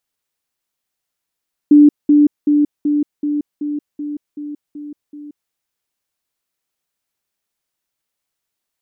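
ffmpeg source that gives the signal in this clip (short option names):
-f lavfi -i "aevalsrc='pow(10,(-3.5-3*floor(t/0.38))/20)*sin(2*PI*294*t)*clip(min(mod(t,0.38),0.18-mod(t,0.38))/0.005,0,1)':d=3.8:s=44100"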